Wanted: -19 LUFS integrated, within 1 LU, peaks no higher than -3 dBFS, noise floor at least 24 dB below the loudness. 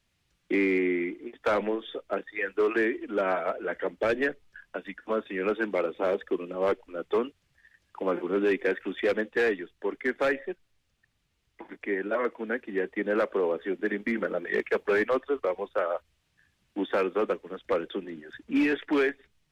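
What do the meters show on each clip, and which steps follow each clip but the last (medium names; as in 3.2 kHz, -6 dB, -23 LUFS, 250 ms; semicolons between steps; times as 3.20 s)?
clipped samples 0.5%; clipping level -18.5 dBFS; loudness -29.0 LUFS; peak level -18.5 dBFS; loudness target -19.0 LUFS
-> clip repair -18.5 dBFS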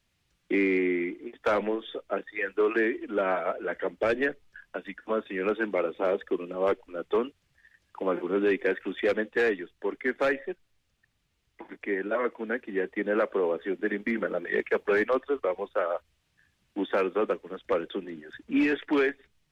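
clipped samples 0.0%; loudness -29.0 LUFS; peak level -14.5 dBFS; loudness target -19.0 LUFS
-> trim +10 dB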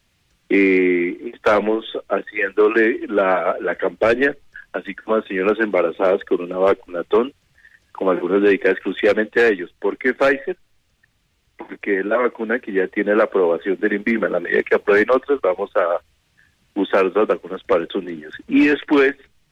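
loudness -19.0 LUFS; peak level -4.5 dBFS; noise floor -64 dBFS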